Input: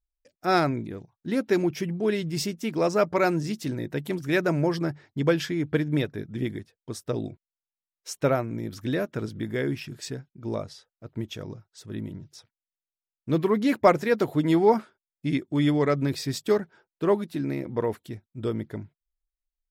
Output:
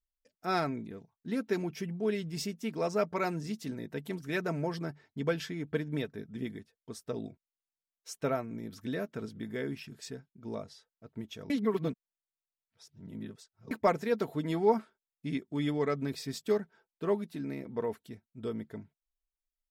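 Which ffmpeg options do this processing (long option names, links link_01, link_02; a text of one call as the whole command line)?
ffmpeg -i in.wav -filter_complex "[0:a]asplit=3[link_01][link_02][link_03];[link_01]atrim=end=11.502[link_04];[link_02]atrim=start=11.498:end=13.712,asetpts=PTS-STARTPTS,areverse[link_05];[link_03]atrim=start=13.708[link_06];[link_04][link_05]acrossfade=duration=0.004:curve1=hsin:curve2=hsin[link_07];[link_07][link_06]acrossfade=duration=0.004:curve1=hsin:curve2=hsin,aecho=1:1:4.5:0.41,volume=-8.5dB" out.wav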